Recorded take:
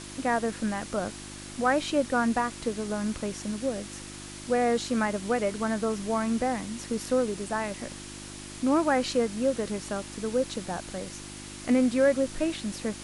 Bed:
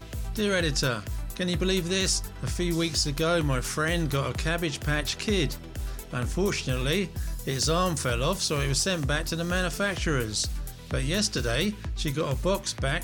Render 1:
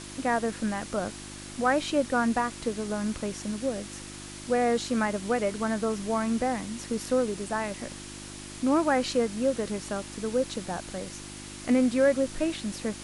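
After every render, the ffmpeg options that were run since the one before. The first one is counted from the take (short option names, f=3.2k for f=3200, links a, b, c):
-af anull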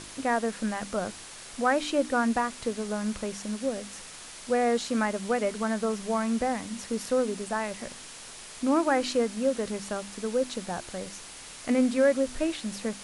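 -af "bandreject=f=50:t=h:w=4,bandreject=f=100:t=h:w=4,bandreject=f=150:t=h:w=4,bandreject=f=200:t=h:w=4,bandreject=f=250:t=h:w=4,bandreject=f=300:t=h:w=4,bandreject=f=350:t=h:w=4"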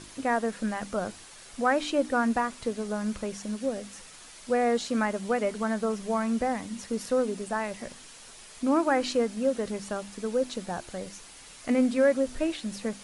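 -af "afftdn=nr=6:nf=-45"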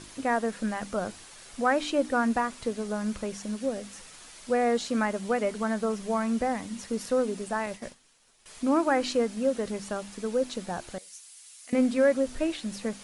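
-filter_complex "[0:a]asettb=1/sr,asplit=3[a][b][c];[a]atrim=end=7.664[d];[b]atrim=start=7.66:end=8.46,asetpts=PTS-STARTPTS,afade=t=in:d=0.004:c=qsin,afade=t=out:st=0.796:d=0.004:c=qsin,agate=range=-33dB:threshold=-39dB:ratio=3:release=100:detection=peak[e];[c]atrim=start=8.456[f];[d][e]acrossfade=d=0.004:c1=hsin:c2=qsin[g];[g][f]acrossfade=d=0.004:c1=qsin:c2=hsin,asettb=1/sr,asplit=3[h][i][j];[h]atrim=end=10.984[k];[i]atrim=start=10.98:end=11.73,asetpts=PTS-STARTPTS,afade=t=in:d=0.004:c=qsin,afade=t=out:st=0.746:d=0.004:c=qsin,aderivative[l];[j]atrim=start=11.726[m];[k][l]acrossfade=d=0.004:c1=hsin:c2=qsin[n];[n][m]acrossfade=d=0.004:c1=qsin:c2=hsin"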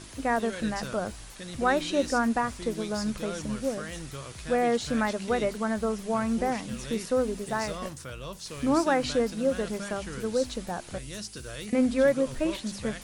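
-filter_complex "[1:a]volume=-13dB[a];[0:a][a]amix=inputs=2:normalize=0"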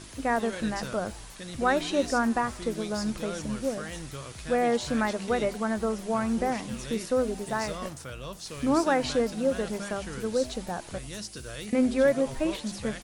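-filter_complex "[0:a]asplit=5[a][b][c][d][e];[b]adelay=92,afreqshift=130,volume=-23dB[f];[c]adelay=184,afreqshift=260,volume=-27.4dB[g];[d]adelay=276,afreqshift=390,volume=-31.9dB[h];[e]adelay=368,afreqshift=520,volume=-36.3dB[i];[a][f][g][h][i]amix=inputs=5:normalize=0"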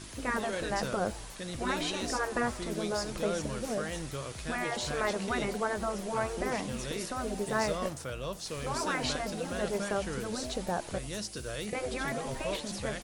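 -af "afftfilt=real='re*lt(hypot(re,im),0.251)':imag='im*lt(hypot(re,im),0.251)':win_size=1024:overlap=0.75,adynamicequalizer=threshold=0.00447:dfrequency=530:dqfactor=1.2:tfrequency=530:tqfactor=1.2:attack=5:release=100:ratio=0.375:range=2:mode=boostabove:tftype=bell"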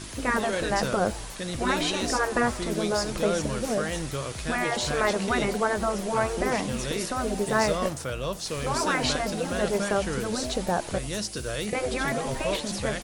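-af "volume=6.5dB"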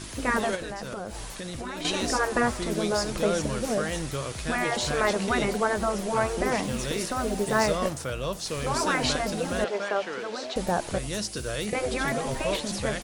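-filter_complex "[0:a]asettb=1/sr,asplit=3[a][b][c];[a]atrim=end=0.554[d];[b]atrim=start=0.55:end=1.85,asetpts=PTS-STARTPTS,afade=t=in:d=0.004:c=qsin,afade=t=out:st=1.296:d=0.004:c=qsin,acompressor=threshold=-31dB:ratio=8:attack=3.2:release=140:knee=1:detection=peak[e];[c]atrim=start=1.846[f];[d][e]acrossfade=d=0.004:c1=hsin:c2=qsin[g];[g][f]acrossfade=d=0.004:c1=qsin:c2=hsin,asettb=1/sr,asplit=3[h][i][j];[h]atrim=end=6.634[k];[i]atrim=start=6.63:end=7.66,asetpts=PTS-STARTPTS,afade=t=in:d=0.004:c=qsin,afade=t=out:st=1.026:d=0.004:c=qsin,acrusher=bits=6:mode=log:mix=0:aa=0.000001[l];[j]atrim=start=7.656[m];[k][l]acrossfade=d=0.004:c1=hsin:c2=qsin[n];[n][m]acrossfade=d=0.004:c1=qsin:c2=hsin,asettb=1/sr,asplit=3[o][p][q];[o]atrim=end=9.644[r];[p]atrim=start=9.64:end=10.56,asetpts=PTS-STARTPTS,afade=t=in:d=0.004:c=qsin,afade=t=out:st=0.916:d=0.004:c=qsin,highpass=440,lowpass=3.9k[s];[q]atrim=start=10.556[t];[r][s]acrossfade=d=0.004:c1=hsin:c2=qsin[u];[u][t]acrossfade=d=0.004:c1=qsin:c2=hsin"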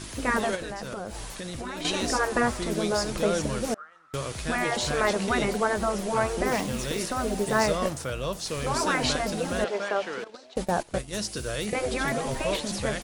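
-filter_complex "[0:a]asettb=1/sr,asplit=3[a][b][c];[a]atrim=end=3.744[d];[b]atrim=start=3.74:end=4.14,asetpts=PTS-STARTPTS,afade=t=in:d=0.004:c=qsin,afade=t=out:st=0.396:d=0.004:c=qsin,bandpass=f=1.3k:t=q:w=16[e];[c]atrim=start=4.136[f];[d][e]acrossfade=d=0.004:c1=hsin:c2=qsin[g];[g][f]acrossfade=d=0.004:c1=qsin:c2=hsin,asettb=1/sr,asplit=3[h][i][j];[h]atrim=end=6.474[k];[i]atrim=start=6.47:end=7,asetpts=PTS-STARTPTS,afade=t=in:d=0.004:c=qsin,afade=t=out:st=0.526:d=0.004:c=qsin,acrusher=bits=4:mode=log:mix=0:aa=0.000001[l];[j]atrim=start=6.996[m];[k][l]acrossfade=d=0.004:c1=hsin:c2=qsin[n];[n][m]acrossfade=d=0.004:c1=qsin:c2=hsin,asettb=1/sr,asplit=3[o][p][q];[o]atrim=end=10.244[r];[p]atrim=start=10.24:end=11.15,asetpts=PTS-STARTPTS,afade=t=in:d=0.004:c=qsin,afade=t=out:st=0.906:d=0.004:c=qsin,agate=range=-16dB:threshold=-32dB:ratio=16:release=100:detection=peak[s];[q]atrim=start=11.146[t];[r][s]acrossfade=d=0.004:c1=hsin:c2=qsin[u];[u][t]acrossfade=d=0.004:c1=qsin:c2=hsin"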